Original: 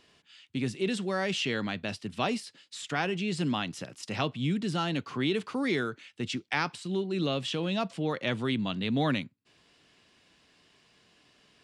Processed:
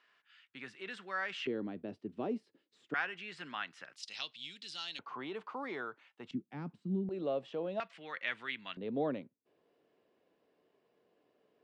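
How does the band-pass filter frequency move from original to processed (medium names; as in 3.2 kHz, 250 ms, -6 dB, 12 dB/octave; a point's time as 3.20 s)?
band-pass filter, Q 2.1
1.5 kHz
from 1.47 s 350 Hz
from 2.94 s 1.6 kHz
from 3.96 s 4.2 kHz
from 4.99 s 920 Hz
from 6.31 s 210 Hz
from 7.09 s 580 Hz
from 7.80 s 1.9 kHz
from 8.77 s 480 Hz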